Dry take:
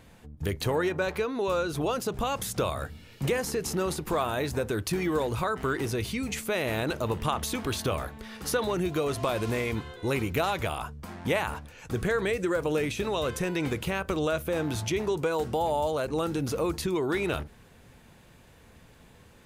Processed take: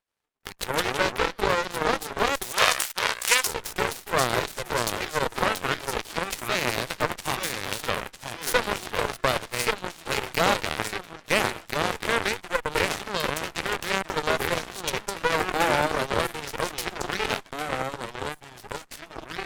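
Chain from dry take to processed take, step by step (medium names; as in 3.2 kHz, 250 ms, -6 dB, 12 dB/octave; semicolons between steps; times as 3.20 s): 7.08–7.81 s: comb filter that takes the minimum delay 1.1 ms; high-pass 480 Hz 24 dB/octave; ever faster or slower copies 84 ms, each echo -2 st, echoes 2; 15.11–15.65 s: peaking EQ 1.1 kHz +5 dB 0.33 oct; Chebyshev shaper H 3 -43 dB, 4 -11 dB, 7 -17 dB, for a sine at -14 dBFS; 2.52–3.47 s: tilt shelf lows -9.5 dB, about 690 Hz; trim +5 dB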